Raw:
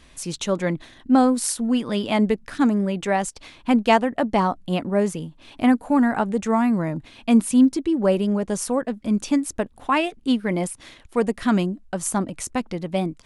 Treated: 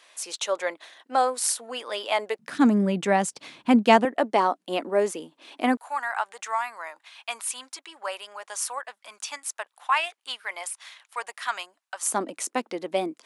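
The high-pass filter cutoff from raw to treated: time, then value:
high-pass filter 24 dB per octave
520 Hz
from 0:02.39 140 Hz
from 0:04.05 310 Hz
from 0:05.77 870 Hz
from 0:12.03 300 Hz

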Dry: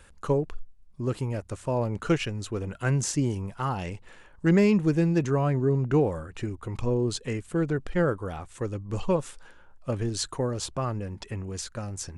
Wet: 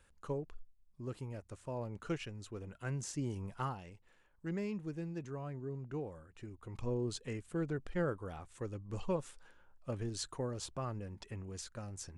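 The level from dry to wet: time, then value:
0:03.09 −14 dB
0:03.62 −7 dB
0:03.82 −18.5 dB
0:06.31 −18.5 dB
0:06.89 −10.5 dB

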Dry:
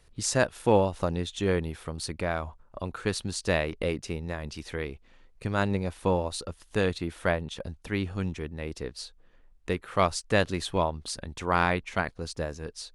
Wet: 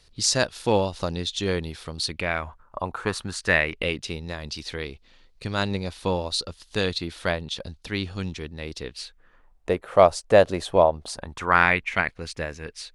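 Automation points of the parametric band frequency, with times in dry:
parametric band +12.5 dB 1.1 octaves
0:01.96 4,500 Hz
0:02.88 810 Hz
0:04.19 4,300 Hz
0:08.72 4,300 Hz
0:09.71 610 Hz
0:11.00 610 Hz
0:11.71 2,200 Hz

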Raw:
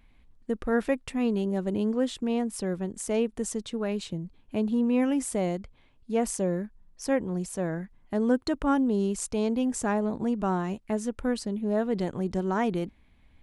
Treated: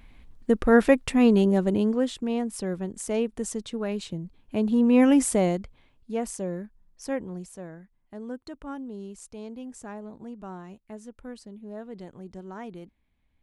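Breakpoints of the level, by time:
0:01.43 +8 dB
0:02.16 0 dB
0:04.40 0 dB
0:05.15 +8 dB
0:06.27 −4 dB
0:07.22 −4 dB
0:07.78 −12.5 dB

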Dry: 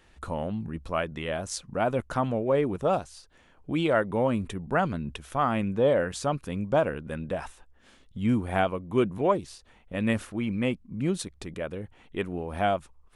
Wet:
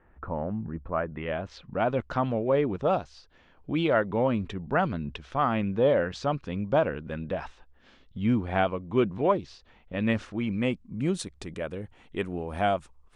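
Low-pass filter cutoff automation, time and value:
low-pass filter 24 dB per octave
0:01.07 1,700 Hz
0:01.31 2,900 Hz
0:02.03 5,200 Hz
0:09.94 5,200 Hz
0:11.04 9,400 Hz

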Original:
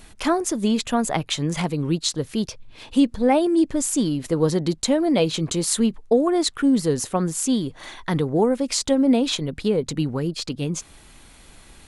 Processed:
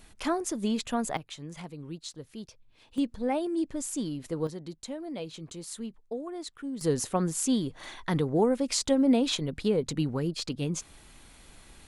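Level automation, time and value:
−8 dB
from 0:01.17 −17.5 dB
from 0:02.98 −11 dB
from 0:04.47 −18 dB
from 0:06.81 −5 dB

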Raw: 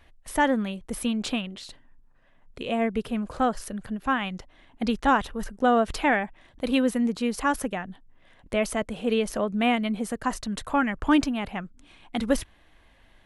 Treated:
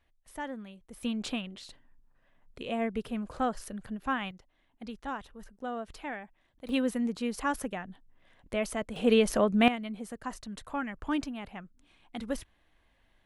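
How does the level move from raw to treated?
−16 dB
from 0:01.03 −6 dB
from 0:04.31 −16 dB
from 0:06.69 −6 dB
from 0:08.96 +1.5 dB
from 0:09.68 −10.5 dB

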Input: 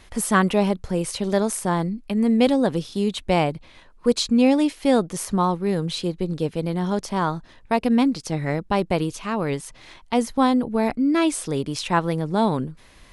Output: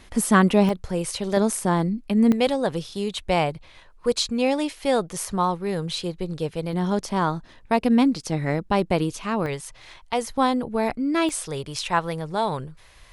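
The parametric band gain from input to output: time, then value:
parametric band 250 Hz 0.99 octaves
+4.5 dB
from 0:00.69 −5.5 dB
from 0:01.37 +3 dB
from 0:02.32 −8.5 dB
from 0:06.73 +0.5 dB
from 0:09.46 −11.5 dB
from 0:10.28 −5 dB
from 0:11.29 −14.5 dB

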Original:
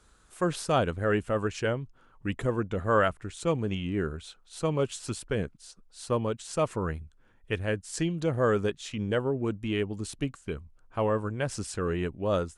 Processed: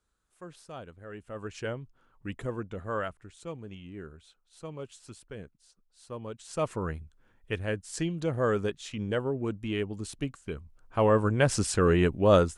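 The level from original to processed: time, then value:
0:01.11 −18 dB
0:01.58 −6 dB
0:02.52 −6 dB
0:03.61 −13 dB
0:06.11 −13 dB
0:06.65 −2 dB
0:10.55 −2 dB
0:11.33 +7 dB

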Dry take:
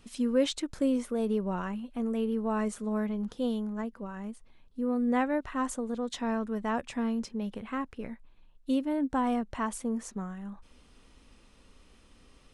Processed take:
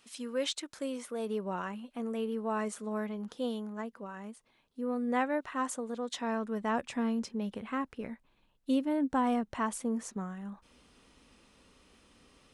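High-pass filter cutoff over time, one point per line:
high-pass filter 6 dB per octave
0:00.98 950 Hz
0:01.47 380 Hz
0:06.18 380 Hz
0:06.81 120 Hz

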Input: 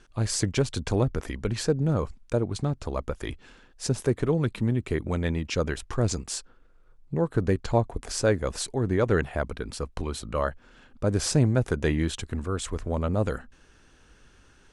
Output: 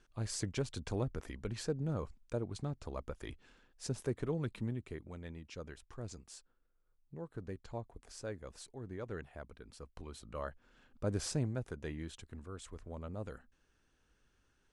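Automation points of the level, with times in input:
0:04.62 −12 dB
0:05.10 −20 dB
0:09.58 −20 dB
0:11.10 −10 dB
0:11.74 −17.5 dB

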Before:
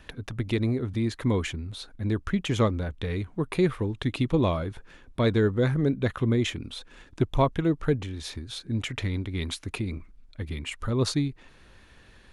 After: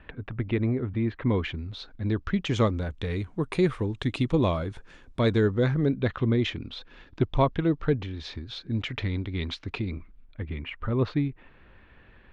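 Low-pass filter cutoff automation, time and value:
low-pass filter 24 dB per octave
0:01.18 2,700 Hz
0:01.70 5,000 Hz
0:02.33 5,000 Hz
0:02.75 9,000 Hz
0:05.28 9,000 Hz
0:05.90 4,700 Hz
0:09.82 4,700 Hz
0:10.41 2,800 Hz

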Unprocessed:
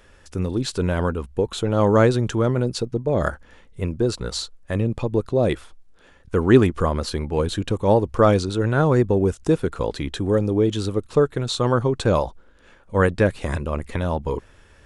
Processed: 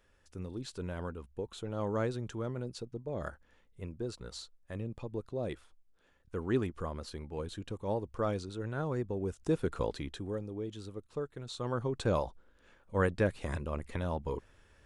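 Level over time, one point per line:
0:09.17 −17 dB
0:09.76 −7.5 dB
0:10.47 −20 dB
0:11.33 −20 dB
0:12.05 −11 dB

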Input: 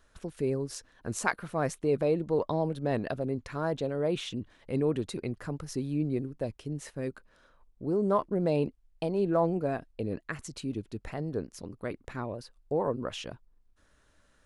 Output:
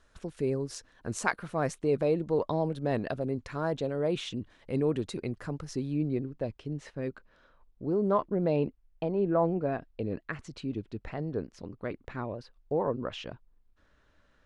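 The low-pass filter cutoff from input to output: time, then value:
0:05.43 9,000 Hz
0:06.27 4,300 Hz
0:08.15 4,300 Hz
0:09.24 2,100 Hz
0:09.94 4,000 Hz

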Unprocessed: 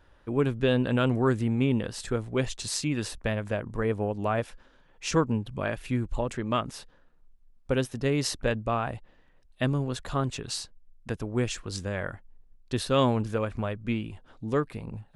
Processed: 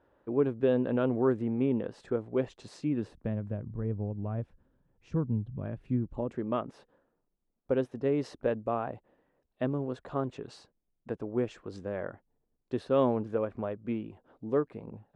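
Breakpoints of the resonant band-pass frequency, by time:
resonant band-pass, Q 0.83
0:02.68 430 Hz
0:03.66 110 Hz
0:05.53 110 Hz
0:06.60 440 Hz

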